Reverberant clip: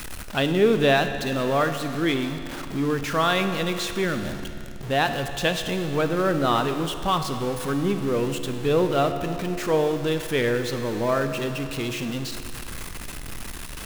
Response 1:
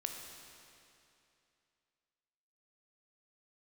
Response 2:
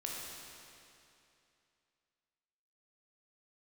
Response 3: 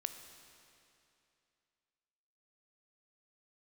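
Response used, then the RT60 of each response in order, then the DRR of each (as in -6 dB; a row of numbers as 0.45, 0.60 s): 3; 2.7, 2.7, 2.7 s; 2.5, -3.5, 7.5 dB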